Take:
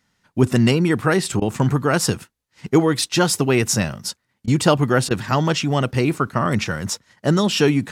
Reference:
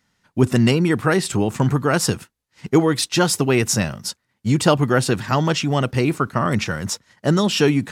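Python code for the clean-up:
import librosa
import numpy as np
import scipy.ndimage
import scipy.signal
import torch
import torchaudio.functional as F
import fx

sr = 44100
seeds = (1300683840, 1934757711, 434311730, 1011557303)

y = fx.fix_interpolate(x, sr, at_s=(1.4, 4.46, 5.09), length_ms=15.0)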